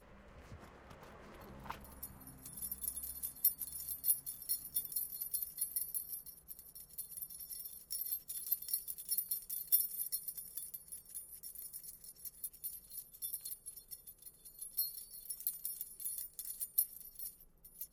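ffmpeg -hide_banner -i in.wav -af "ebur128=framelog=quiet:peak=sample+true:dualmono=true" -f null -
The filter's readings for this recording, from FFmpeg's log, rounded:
Integrated loudness:
  I:         -36.4 LUFS
  Threshold: -47.1 LUFS
Loudness range:
  LRA:         8.8 LU
  Threshold: -56.7 LUFS
  LRA low:   -42.7 LUFS
  LRA high:  -33.9 LUFS
Sample peak:
  Peak:      -14.8 dBFS
True peak:
  Peak:      -14.2 dBFS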